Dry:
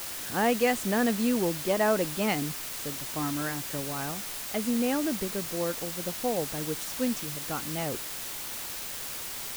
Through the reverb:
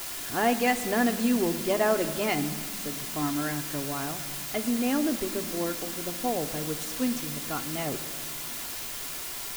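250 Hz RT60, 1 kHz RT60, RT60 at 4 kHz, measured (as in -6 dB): 3.6 s, 1.6 s, 1.3 s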